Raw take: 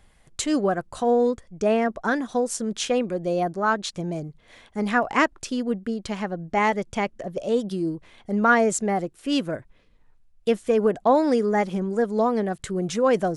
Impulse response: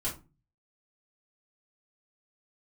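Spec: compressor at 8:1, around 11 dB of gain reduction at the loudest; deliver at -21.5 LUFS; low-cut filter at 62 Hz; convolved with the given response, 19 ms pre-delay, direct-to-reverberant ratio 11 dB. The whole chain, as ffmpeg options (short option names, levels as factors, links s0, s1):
-filter_complex "[0:a]highpass=62,acompressor=threshold=0.0562:ratio=8,asplit=2[s0][s1];[1:a]atrim=start_sample=2205,adelay=19[s2];[s1][s2]afir=irnorm=-1:irlink=0,volume=0.178[s3];[s0][s3]amix=inputs=2:normalize=0,volume=2.66"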